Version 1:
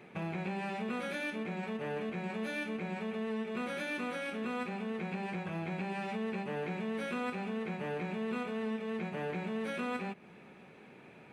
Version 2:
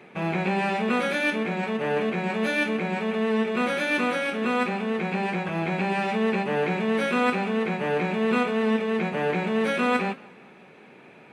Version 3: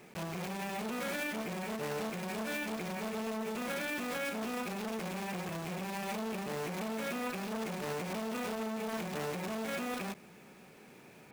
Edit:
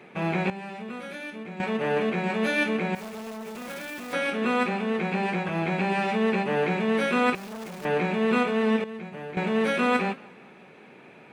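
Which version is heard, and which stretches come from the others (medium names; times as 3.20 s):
2
0.50–1.60 s: from 1
2.95–4.13 s: from 3
7.35–7.85 s: from 3
8.84–9.37 s: from 1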